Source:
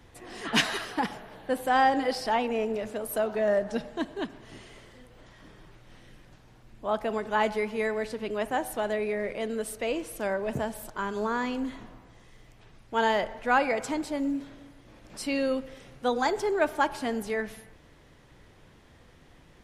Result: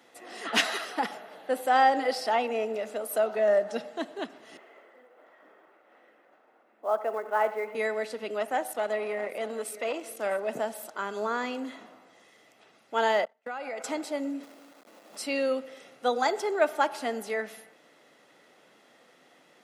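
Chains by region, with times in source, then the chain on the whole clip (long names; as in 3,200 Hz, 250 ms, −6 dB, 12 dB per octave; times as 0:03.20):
0:04.57–0:07.75: three-way crossover with the lows and the highs turned down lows −22 dB, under 280 Hz, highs −24 dB, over 2,100 Hz + floating-point word with a short mantissa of 4 bits + single-tap delay 86 ms −15.5 dB
0:08.39–0:10.45: single-tap delay 646 ms −17.5 dB + saturating transformer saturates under 780 Hz
0:13.25–0:13.84: noise gate −37 dBFS, range −33 dB + downward compressor 10 to 1, threshold −32 dBFS
0:14.43–0:15.16: Chebyshev band-pass filter 170–1,100 Hz, order 3 + log-companded quantiser 4 bits
whole clip: high-pass filter 250 Hz 24 dB per octave; comb filter 1.5 ms, depth 36%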